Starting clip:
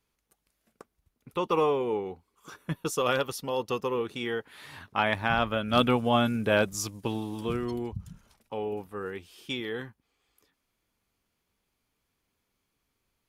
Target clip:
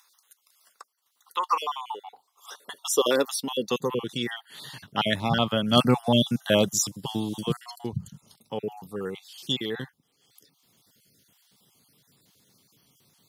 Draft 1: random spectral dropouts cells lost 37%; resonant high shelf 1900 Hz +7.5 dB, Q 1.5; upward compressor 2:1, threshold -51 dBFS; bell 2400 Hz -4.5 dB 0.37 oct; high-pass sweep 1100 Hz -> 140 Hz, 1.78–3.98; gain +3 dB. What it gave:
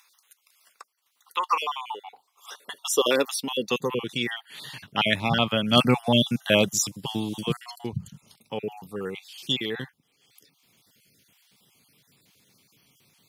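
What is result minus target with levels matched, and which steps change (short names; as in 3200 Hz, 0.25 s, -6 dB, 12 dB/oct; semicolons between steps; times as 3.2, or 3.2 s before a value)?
2000 Hz band +4.0 dB
change: bell 2400 Hz -16 dB 0.37 oct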